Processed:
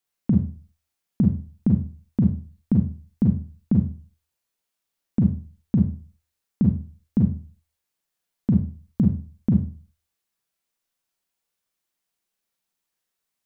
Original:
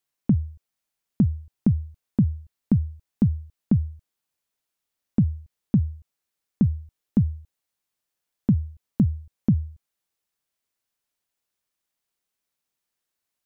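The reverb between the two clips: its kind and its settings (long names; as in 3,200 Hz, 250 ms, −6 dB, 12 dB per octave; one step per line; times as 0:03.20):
four-comb reverb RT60 0.37 s, combs from 33 ms, DRR 0.5 dB
level −1.5 dB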